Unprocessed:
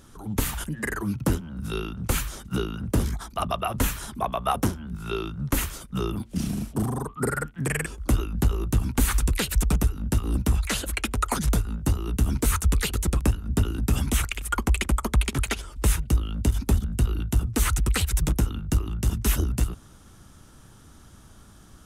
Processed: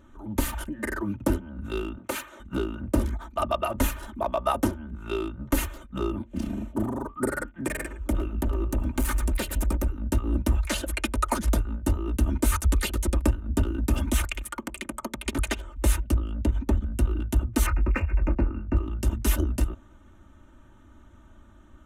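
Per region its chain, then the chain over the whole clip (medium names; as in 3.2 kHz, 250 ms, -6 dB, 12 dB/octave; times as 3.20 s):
1.98–2.40 s: high-pass 130 Hz + tone controls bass -12 dB, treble -3 dB
7.67–9.89 s: hard clipper -21 dBFS + dynamic bell 4 kHz, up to -4 dB, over -42 dBFS, Q 0.81 + delay 112 ms -12 dB
14.43–15.26 s: resonant low shelf 100 Hz -12 dB, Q 3 + compression 16:1, threshold -27 dBFS
16.14–16.87 s: low-pass 3.8 kHz 6 dB/octave + transformer saturation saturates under 61 Hz
17.66–18.77 s: brick-wall FIR low-pass 2.8 kHz + doubling 24 ms -10 dB
whole clip: local Wiener filter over 9 samples; dynamic bell 520 Hz, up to +5 dB, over -43 dBFS, Q 0.89; comb 3.3 ms, depth 82%; trim -4 dB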